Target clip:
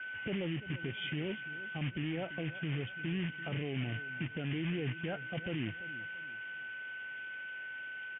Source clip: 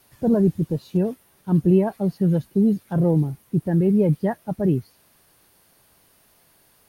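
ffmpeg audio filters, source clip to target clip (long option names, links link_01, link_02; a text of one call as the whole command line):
ffmpeg -i in.wav -filter_complex "[0:a]highpass=frequency=270:poles=1,aeval=exprs='val(0)+0.00562*sin(2*PI*1800*n/s)':channel_layout=same,acompressor=threshold=-25dB:ratio=20,alimiter=level_in=6dB:limit=-24dB:level=0:latency=1:release=55,volume=-6dB,acrusher=bits=3:mode=log:mix=0:aa=0.000001,aexciter=amount=5.2:drive=5.3:freq=2100,aresample=8000,aresample=44100,asetrate=37044,aresample=44100,asplit=2[link_01][link_02];[link_02]aecho=0:1:339|678|1017:0.158|0.0571|0.0205[link_03];[link_01][link_03]amix=inputs=2:normalize=0,agate=range=-33dB:threshold=-56dB:ratio=3:detection=peak" out.wav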